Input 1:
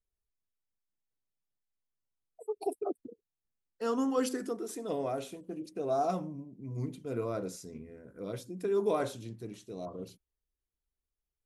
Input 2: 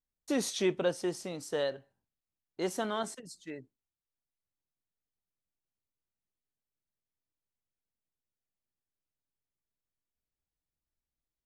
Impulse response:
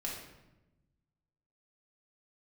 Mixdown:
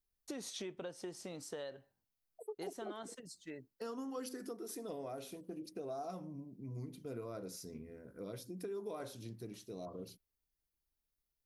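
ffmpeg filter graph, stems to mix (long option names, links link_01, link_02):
-filter_complex "[0:a]aexciter=amount=1.5:drive=4.3:freq=4300,volume=-2.5dB[link_01];[1:a]acompressor=threshold=-32dB:ratio=2,volume=-4dB[link_02];[link_01][link_02]amix=inputs=2:normalize=0,acompressor=threshold=-42dB:ratio=4"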